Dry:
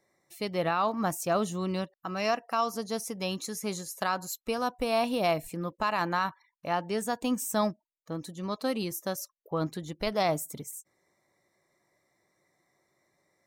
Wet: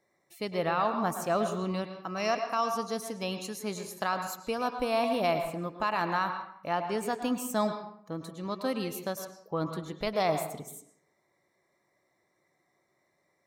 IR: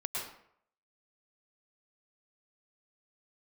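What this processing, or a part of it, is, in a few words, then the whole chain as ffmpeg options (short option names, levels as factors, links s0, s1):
filtered reverb send: -filter_complex "[0:a]asplit=2[s0][s1];[s1]highpass=f=160:p=1,lowpass=4700[s2];[1:a]atrim=start_sample=2205[s3];[s2][s3]afir=irnorm=-1:irlink=0,volume=0.531[s4];[s0][s4]amix=inputs=2:normalize=0,asettb=1/sr,asplit=3[s5][s6][s7];[s5]atrim=end=1.934[s8];[s6]atrim=start=1.93:end=2.97,asetpts=PTS-STARTPTS,afade=t=in:d=0.004:c=qsin,afade=t=out:st=1.036:d=0.004:c=qsin,equalizer=f=5800:t=o:w=0.2:g=7[s9];[s7]atrim=start=2.966[s10];[s8][s9]acrossfade=d=0.004:c1=hsin:c2=qsin[s11];[s11][s10]acrossfade=d=0.004:c1=qsin:c2=hsin,volume=0.631"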